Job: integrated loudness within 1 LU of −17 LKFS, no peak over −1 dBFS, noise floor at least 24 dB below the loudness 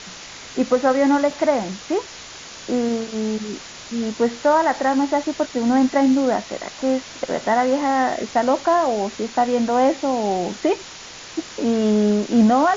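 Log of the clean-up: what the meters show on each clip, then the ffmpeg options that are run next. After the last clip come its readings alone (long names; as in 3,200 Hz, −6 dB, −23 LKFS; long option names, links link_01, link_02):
background noise floor −38 dBFS; target noise floor −45 dBFS; integrated loudness −20.5 LKFS; sample peak −6.5 dBFS; target loudness −17.0 LKFS
→ -af "afftdn=noise_reduction=7:noise_floor=-38"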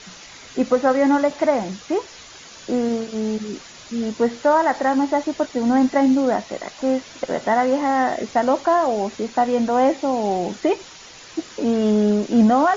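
background noise floor −42 dBFS; target noise floor −45 dBFS
→ -af "afftdn=noise_reduction=6:noise_floor=-42"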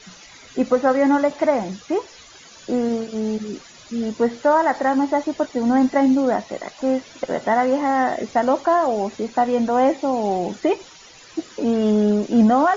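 background noise floor −45 dBFS; integrated loudness −20.5 LKFS; sample peak −6.5 dBFS; target loudness −17.0 LKFS
→ -af "volume=3.5dB"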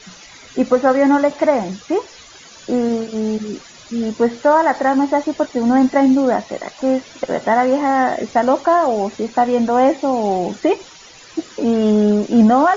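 integrated loudness −17.0 LKFS; sample peak −3.0 dBFS; background noise floor −42 dBFS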